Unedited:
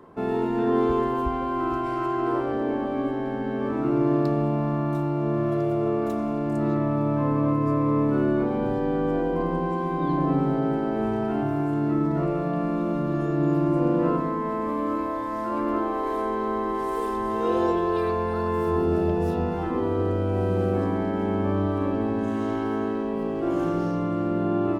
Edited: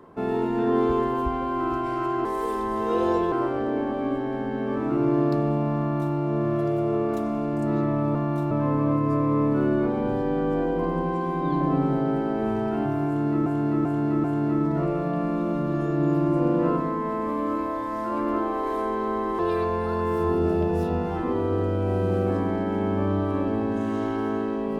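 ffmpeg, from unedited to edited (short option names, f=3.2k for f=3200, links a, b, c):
-filter_complex "[0:a]asplit=9[a][b][c][d][e][f][g][h][i];[a]atrim=end=2.252[j];[b]atrim=start=16.788:end=17.862[k];[c]atrim=start=2.248:end=7.082[l];[d]atrim=start=4.718:end=5.082[m];[e]atrim=start=7.078:end=12.032[n];[f]atrim=start=11.638:end=12.032[o];[g]atrim=start=11.638:end=12.032[p];[h]atrim=start=11.638:end=16.792[q];[i]atrim=start=17.858[r];[j][k]acrossfade=d=0.004:c1=hsin:c2=hsin[s];[s][l]acrossfade=d=0.004:c1=hsin:c2=hsin[t];[t][m]acrossfade=d=0.004:c1=hsin:c2=hsin[u];[u][n]acrossfade=d=0.004:c1=hsin:c2=hsin[v];[v][o]acrossfade=d=0.004:c1=hsin:c2=hsin[w];[w][p]acrossfade=d=0.004:c1=hsin:c2=hsin[x];[x][q]acrossfade=d=0.004:c1=hsin:c2=hsin[y];[y][r]acrossfade=d=0.004:c1=hsin:c2=hsin"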